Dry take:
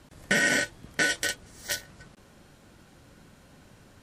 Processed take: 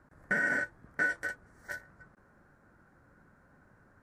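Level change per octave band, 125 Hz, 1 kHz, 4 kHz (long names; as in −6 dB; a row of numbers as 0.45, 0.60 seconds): −9.0, −4.0, −26.0 decibels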